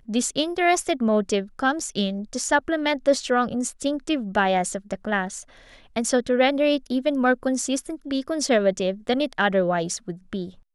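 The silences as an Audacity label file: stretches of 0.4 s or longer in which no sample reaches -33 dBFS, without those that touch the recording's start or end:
5.420000	5.960000	silence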